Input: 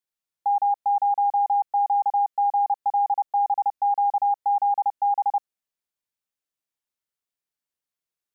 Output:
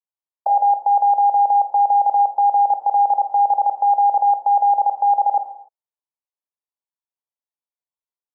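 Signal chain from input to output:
low-pass that shuts in the quiet parts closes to 550 Hz, open at −20.5 dBFS
output level in coarse steps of 23 dB
envelope filter 500–1,000 Hz, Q 3.3, down, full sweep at −28.5 dBFS
reverb whose tail is shaped and stops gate 320 ms falling, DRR 7.5 dB
boost into a limiter +26.5 dB
level −8.5 dB

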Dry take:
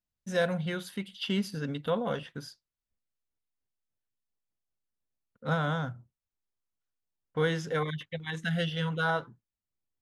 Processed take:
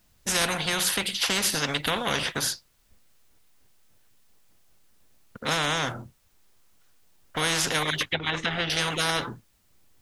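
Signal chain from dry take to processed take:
0:08.07–0:08.70: treble cut that deepens with the level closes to 1,500 Hz, closed at −30.5 dBFS
every bin compressed towards the loudest bin 4 to 1
level +5 dB

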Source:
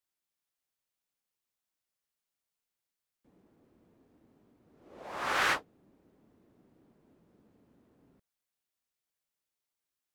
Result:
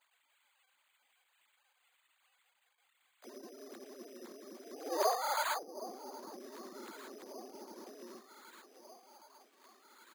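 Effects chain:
three sine waves on the formant tracks
treble cut that deepens with the level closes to 360 Hz, closed at −37 dBFS
pitch-shifted copies added −7 semitones −5 dB, +7 semitones −7 dB
parametric band 500 Hz −3 dB
delay that swaps between a low-pass and a high-pass 769 ms, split 990 Hz, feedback 66%, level −14 dB
decimation without filtering 8×
high-pass filter 250 Hz 6 dB per octave
one half of a high-frequency compander encoder only
level +14.5 dB

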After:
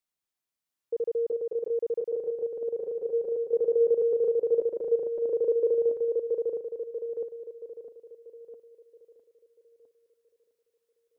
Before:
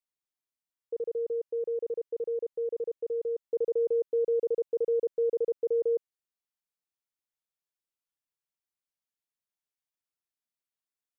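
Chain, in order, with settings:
feedback delay that plays each chunk backwards 657 ms, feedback 46%, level −3 dB
level +3.5 dB

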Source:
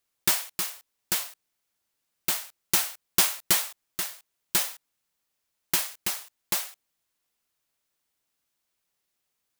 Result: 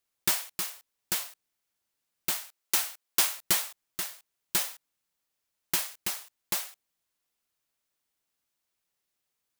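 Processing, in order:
0:02.34–0:03.36: Bessel high-pass filter 380 Hz, order 2
level −3 dB

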